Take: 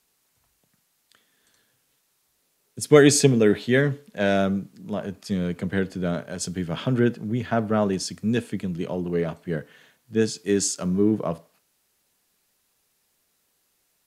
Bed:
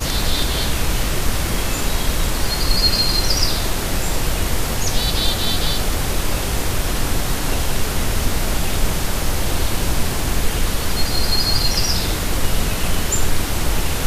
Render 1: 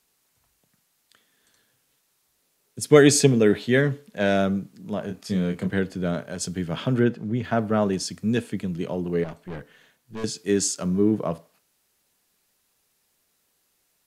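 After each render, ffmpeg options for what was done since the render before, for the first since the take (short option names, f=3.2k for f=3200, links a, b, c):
-filter_complex "[0:a]asettb=1/sr,asplit=3[a][b][c];[a]atrim=end=5.064[d];[b]atrim=start=5.06:end=5.7,asetpts=PTS-STARTPTS,afade=t=in:d=0.004:c=qsin,afade=t=out:st=0.636:d=0.004:c=qsin,asplit=2[e][f];[f]adelay=27,volume=-6dB[g];[e][g]amix=inputs=2:normalize=0,atrim=end_sample=28224[h];[c]atrim=start=5.696[i];[d][h]acrossfade=d=0.004:c1=hsin:c2=qsin[j];[j][i]acrossfade=d=0.004:c1=qsin:c2=hsin,asettb=1/sr,asplit=3[k][l][m];[k]atrim=end=7.034[n];[l]atrim=start=7.03:end=7.44,asetpts=PTS-STARTPTS,afade=t=in:d=0.004:c=qsin,afade=t=out:st=0.406:d=0.004:c=qsin,highshelf=f=6.6k:g=-11[o];[m]atrim=start=7.436[p];[n][o]acrossfade=d=0.004:c1=hsin:c2=qsin[q];[q][p]acrossfade=d=0.004:c1=qsin:c2=hsin,asettb=1/sr,asplit=3[r][s][t];[r]atrim=end=9.244[u];[s]atrim=start=9.24:end=10.24,asetpts=PTS-STARTPTS,afade=t=in:d=0.004:c=qsin,afade=t=out:st=0.996:d=0.004:c=qsin,aeval=exprs='(tanh(35.5*val(0)+0.55)-tanh(0.55))/35.5':c=same[v];[t]atrim=start=10.236[w];[u][v]acrossfade=d=0.004:c1=hsin:c2=qsin[x];[x][w]acrossfade=d=0.004:c1=qsin:c2=hsin"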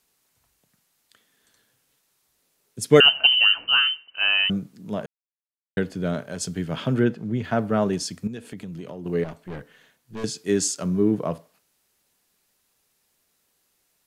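-filter_complex "[0:a]asettb=1/sr,asplit=3[a][b][c];[a]atrim=end=3.004[d];[b]atrim=start=3:end=4.5,asetpts=PTS-STARTPTS,afade=t=in:d=0.004:c=qsin,afade=t=out:st=1.496:d=0.004:c=qsin,lowpass=f=2.7k:t=q:w=0.5098,lowpass=f=2.7k:t=q:w=0.6013,lowpass=f=2.7k:t=q:w=0.9,lowpass=f=2.7k:t=q:w=2.563,afreqshift=-3200[e];[c]atrim=start=4.496[f];[d][e]acrossfade=d=0.004:c1=hsin:c2=qsin[g];[g][f]acrossfade=d=0.004:c1=qsin:c2=hsin,asettb=1/sr,asplit=3[h][i][j];[h]atrim=end=8.274[k];[i]atrim=start=8.27:end=9.06,asetpts=PTS-STARTPTS,afade=t=in:d=0.004:c=qsin,afade=t=out:st=0.786:d=0.004:c=qsin,acompressor=threshold=-32dB:ratio=6:attack=3.2:release=140:knee=1:detection=peak[l];[j]atrim=start=9.056[m];[k][l]acrossfade=d=0.004:c1=hsin:c2=qsin[n];[n][m]acrossfade=d=0.004:c1=qsin:c2=hsin,asplit=3[o][p][q];[o]atrim=end=5.06,asetpts=PTS-STARTPTS,afade=t=out:st=5.056:d=0.004:c=hsin[r];[p]atrim=start=5.06:end=5.77,asetpts=PTS-STARTPTS,volume=0[s];[q]atrim=start=5.77,asetpts=PTS-STARTPTS,afade=t=in:d=0.004:c=hsin[t];[r][s][t]concat=n=3:v=0:a=1"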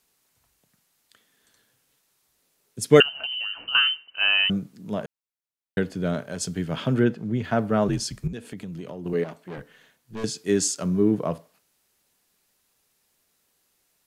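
-filter_complex "[0:a]asettb=1/sr,asplit=3[a][b][c];[a]atrim=end=3.024[d];[b]atrim=start=3.02:end=3.75,asetpts=PTS-STARTPTS,afade=t=in:d=0.004:c=qsin,afade=t=out:st=0.726:d=0.004:c=qsin,acompressor=threshold=-29dB:ratio=5:attack=3.2:release=140:knee=1:detection=peak[e];[c]atrim=start=3.746[f];[d][e]acrossfade=d=0.004:c1=hsin:c2=qsin[g];[g][f]acrossfade=d=0.004:c1=qsin:c2=hsin,asettb=1/sr,asplit=3[h][i][j];[h]atrim=end=7.884[k];[i]atrim=start=7.88:end=8.33,asetpts=PTS-STARTPTS,afade=t=in:d=0.004:c=qsin,afade=t=out:st=0.446:d=0.004:c=qsin,afreqshift=-54[l];[j]atrim=start=8.326[m];[k][l]acrossfade=d=0.004:c1=hsin:c2=qsin[n];[n][m]acrossfade=d=0.004:c1=qsin:c2=hsin,asettb=1/sr,asplit=3[o][p][q];[o]atrim=end=9.134[r];[p]atrim=start=9.13:end=9.58,asetpts=PTS-STARTPTS,afade=t=in:d=0.004:c=qsin,afade=t=out:st=0.446:d=0.004:c=qsin,highpass=180[s];[q]atrim=start=9.576[t];[r][s]acrossfade=d=0.004:c1=hsin:c2=qsin[u];[u][t]acrossfade=d=0.004:c1=qsin:c2=hsin"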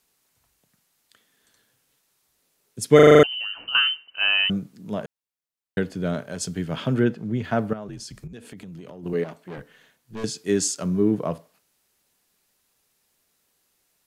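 -filter_complex "[0:a]asettb=1/sr,asplit=3[a][b][c];[a]atrim=end=7.734[d];[b]atrim=start=7.73:end=9.03,asetpts=PTS-STARTPTS,afade=t=in:d=0.004:c=qsin,afade=t=out:st=1.296:d=0.004:c=qsin,acompressor=threshold=-37dB:ratio=3:attack=3.2:release=140:knee=1:detection=peak[e];[c]atrim=start=9.026[f];[d][e]acrossfade=d=0.004:c1=hsin:c2=qsin[g];[g][f]acrossfade=d=0.004:c1=qsin:c2=hsin,asplit=8[h][i][j][k][l][m][n][o];[h]atrim=end=2.992[p];[i]atrim=start=2.948:end=2.992[q];[j]atrim=start=2.948:end=2.992[r];[k]atrim=start=2.948:end=2.992[s];[l]atrim=start=2.948:end=2.992[t];[m]atrim=start=2.948:end=2.992[u];[n]atrim=start=2.948:end=2.992[v];[o]atrim=start=3.228[w];[p][q]acrossfade=d=0.004:c1=hsin:c2=hsin[x];[x][r]acrossfade=d=0.004:c1=hsin:c2=hsin[y];[y][s]acrossfade=d=0.004:c1=hsin:c2=hsin[z];[z][t]acrossfade=d=0.004:c1=hsin:c2=hsin[aa];[aa][u]acrossfade=d=0.004:c1=hsin:c2=hsin[ab];[ab][v]acrossfade=d=0.004:c1=hsin:c2=hsin[ac];[ac][w]acrossfade=d=0.004:c1=hsin:c2=hsin"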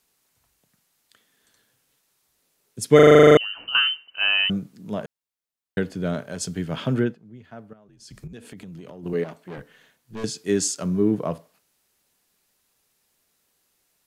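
-filter_complex "[0:a]asplit=9[a][b][c][d][e][f][g][h][i];[a]atrim=end=3.172[j];[b]atrim=start=3.128:end=3.172[k];[c]atrim=start=3.128:end=3.172[l];[d]atrim=start=3.128:end=3.172[m];[e]atrim=start=3.128:end=3.172[n];[f]atrim=start=3.128:end=3.172[o];[g]atrim=start=3.368:end=7.19,asetpts=PTS-STARTPTS,afade=t=out:st=3.612:d=0.21:silence=0.125893[p];[h]atrim=start=7.19:end=7.98,asetpts=PTS-STARTPTS,volume=-18dB[q];[i]atrim=start=7.98,asetpts=PTS-STARTPTS,afade=t=in:d=0.21:silence=0.125893[r];[j][k]acrossfade=d=0.004:c1=hsin:c2=hsin[s];[s][l]acrossfade=d=0.004:c1=hsin:c2=hsin[t];[t][m]acrossfade=d=0.004:c1=hsin:c2=hsin[u];[u][n]acrossfade=d=0.004:c1=hsin:c2=hsin[v];[v][o]acrossfade=d=0.004:c1=hsin:c2=hsin[w];[p][q][r]concat=n=3:v=0:a=1[x];[w][x]acrossfade=d=0.004:c1=hsin:c2=hsin"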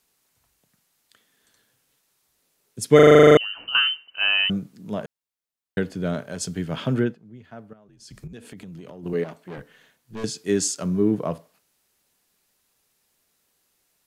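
-af anull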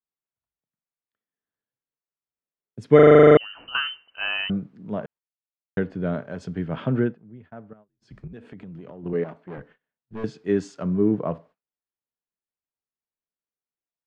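-af "agate=range=-26dB:threshold=-49dB:ratio=16:detection=peak,lowpass=1.9k"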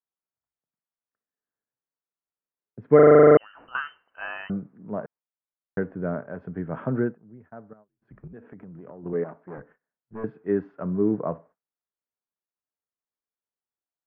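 -af "lowpass=f=1.7k:w=0.5412,lowpass=f=1.7k:w=1.3066,lowshelf=f=230:g=-6"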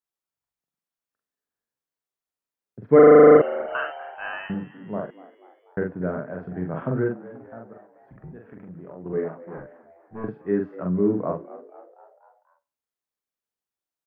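-filter_complex "[0:a]asplit=2[a][b];[b]adelay=44,volume=-3dB[c];[a][c]amix=inputs=2:normalize=0,asplit=6[d][e][f][g][h][i];[e]adelay=243,afreqshift=82,volume=-18dB[j];[f]adelay=486,afreqshift=164,volume=-23.2dB[k];[g]adelay=729,afreqshift=246,volume=-28.4dB[l];[h]adelay=972,afreqshift=328,volume=-33.6dB[m];[i]adelay=1215,afreqshift=410,volume=-38.8dB[n];[d][j][k][l][m][n]amix=inputs=6:normalize=0"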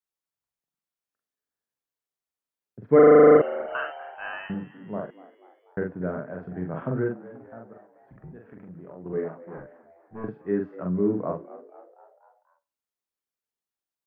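-af "volume=-2.5dB"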